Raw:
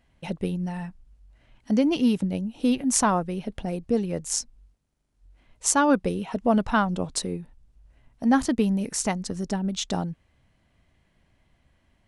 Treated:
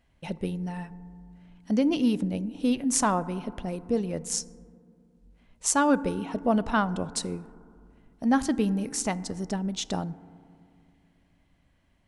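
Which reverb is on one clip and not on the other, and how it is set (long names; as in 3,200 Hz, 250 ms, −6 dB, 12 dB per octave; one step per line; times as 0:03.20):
feedback delay network reverb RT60 2.3 s, low-frequency decay 1.4×, high-frequency decay 0.25×, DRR 16.5 dB
level −2.5 dB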